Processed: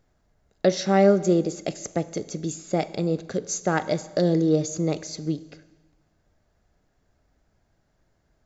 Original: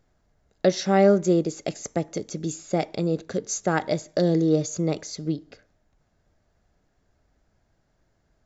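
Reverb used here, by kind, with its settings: Schroeder reverb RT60 1.3 s, combs from 30 ms, DRR 16 dB

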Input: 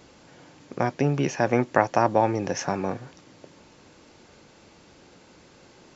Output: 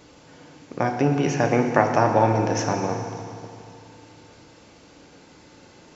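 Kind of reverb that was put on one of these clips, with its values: FDN reverb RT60 2.5 s, low-frequency decay 1.2×, high-frequency decay 0.9×, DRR 3 dB; trim +1 dB

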